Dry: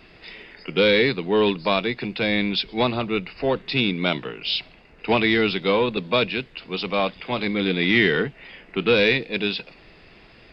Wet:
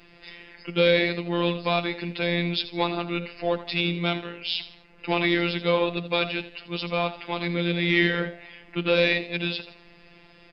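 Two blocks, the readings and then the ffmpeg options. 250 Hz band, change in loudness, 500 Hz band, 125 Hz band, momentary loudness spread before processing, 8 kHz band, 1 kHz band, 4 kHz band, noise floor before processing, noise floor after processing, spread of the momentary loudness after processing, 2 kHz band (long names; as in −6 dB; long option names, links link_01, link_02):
−3.5 dB, −3.5 dB, −4.0 dB, 0.0 dB, 11 LU, can't be measured, −3.0 dB, −3.5 dB, −50 dBFS, −53 dBFS, 13 LU, −3.5 dB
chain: -filter_complex "[0:a]asplit=4[link_01][link_02][link_03][link_04];[link_02]adelay=81,afreqshift=83,volume=-14dB[link_05];[link_03]adelay=162,afreqshift=166,volume=-23.4dB[link_06];[link_04]adelay=243,afreqshift=249,volume=-32.7dB[link_07];[link_01][link_05][link_06][link_07]amix=inputs=4:normalize=0,afftfilt=real='hypot(re,im)*cos(PI*b)':imag='0':win_size=1024:overlap=0.75"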